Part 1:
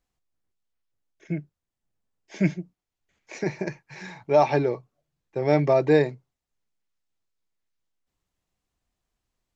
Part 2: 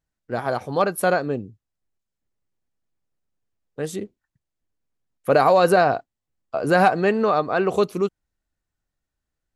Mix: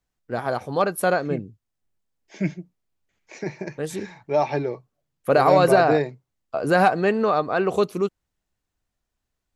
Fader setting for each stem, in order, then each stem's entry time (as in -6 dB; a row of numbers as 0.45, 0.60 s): -2.5, -1.0 dB; 0.00, 0.00 s